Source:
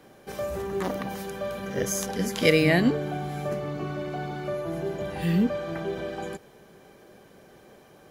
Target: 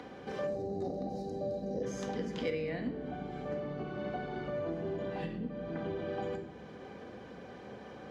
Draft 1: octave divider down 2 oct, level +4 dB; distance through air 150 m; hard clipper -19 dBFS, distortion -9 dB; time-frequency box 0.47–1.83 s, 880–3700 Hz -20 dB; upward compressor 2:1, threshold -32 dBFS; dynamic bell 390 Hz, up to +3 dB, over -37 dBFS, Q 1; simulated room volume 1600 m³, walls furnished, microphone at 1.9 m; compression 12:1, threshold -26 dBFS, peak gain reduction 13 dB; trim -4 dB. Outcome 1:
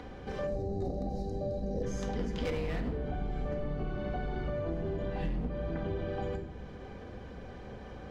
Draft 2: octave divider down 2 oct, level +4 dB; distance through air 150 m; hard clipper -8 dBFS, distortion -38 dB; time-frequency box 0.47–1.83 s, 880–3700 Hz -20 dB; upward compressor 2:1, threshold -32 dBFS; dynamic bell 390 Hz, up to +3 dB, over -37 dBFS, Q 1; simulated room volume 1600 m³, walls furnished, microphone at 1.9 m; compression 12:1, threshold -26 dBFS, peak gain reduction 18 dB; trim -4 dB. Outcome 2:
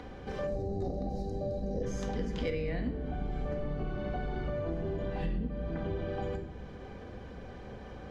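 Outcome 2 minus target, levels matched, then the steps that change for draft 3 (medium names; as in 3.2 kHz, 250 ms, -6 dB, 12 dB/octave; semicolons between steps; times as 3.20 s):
125 Hz band +5.0 dB
add after compression: high-pass 170 Hz 12 dB/octave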